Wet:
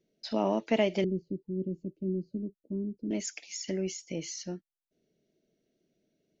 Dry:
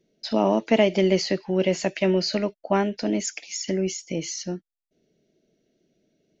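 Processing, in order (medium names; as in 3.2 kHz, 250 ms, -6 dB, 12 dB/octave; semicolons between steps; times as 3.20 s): 1.04–3.11 s: inverse Chebyshev low-pass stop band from 700 Hz, stop band 40 dB; trim -7.5 dB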